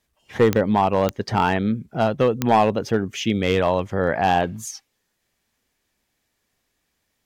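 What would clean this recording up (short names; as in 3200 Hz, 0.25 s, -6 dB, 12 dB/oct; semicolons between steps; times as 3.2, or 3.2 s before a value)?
clip repair -9 dBFS; de-click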